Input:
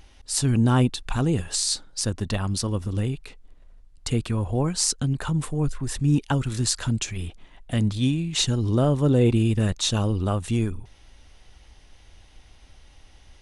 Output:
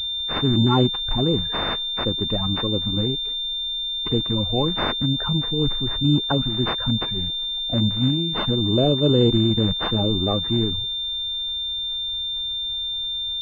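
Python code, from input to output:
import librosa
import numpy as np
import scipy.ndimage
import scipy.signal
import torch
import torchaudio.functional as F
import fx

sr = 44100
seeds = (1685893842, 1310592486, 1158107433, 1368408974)

y = fx.spec_quant(x, sr, step_db=30)
y = fx.pwm(y, sr, carrier_hz=3600.0)
y = y * 10.0 ** (2.0 / 20.0)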